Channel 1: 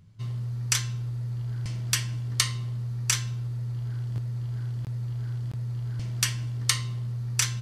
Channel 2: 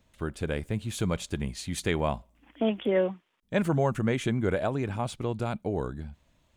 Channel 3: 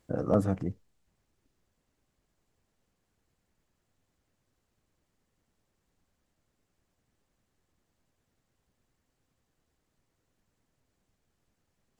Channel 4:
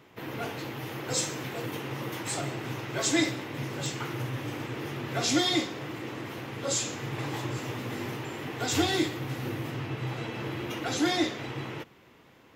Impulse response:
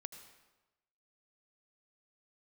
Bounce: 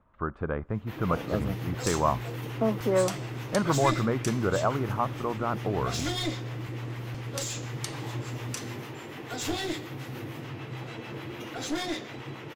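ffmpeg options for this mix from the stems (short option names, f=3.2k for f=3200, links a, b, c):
-filter_complex "[0:a]acompressor=threshold=-28dB:ratio=6,adelay=1150,volume=-5.5dB[a];[1:a]acontrast=79,lowpass=f=1.2k:t=q:w=4.1,volume=-8dB[b];[2:a]adelay=1000,volume=-5.5dB[c];[3:a]acrossover=split=670[d][e];[d]aeval=exprs='val(0)*(1-0.5/2+0.5/2*cos(2*PI*6.8*n/s))':c=same[f];[e]aeval=exprs='val(0)*(1-0.5/2-0.5/2*cos(2*PI*6.8*n/s))':c=same[g];[f][g]amix=inputs=2:normalize=0,aeval=exprs='clip(val(0),-1,0.0316)':c=same,adelay=700,volume=-1.5dB[h];[a][b][c][h]amix=inputs=4:normalize=0"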